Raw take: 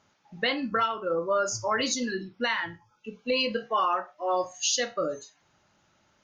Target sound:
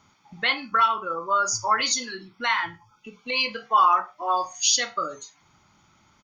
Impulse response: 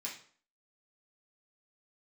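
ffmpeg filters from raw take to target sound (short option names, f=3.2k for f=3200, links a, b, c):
-filter_complex "[0:a]aecho=1:1:0.9:0.57,acrossover=split=540|3200[a][b][c];[a]acompressor=threshold=-48dB:ratio=6[d];[d][b][c]amix=inputs=3:normalize=0,volume=5dB"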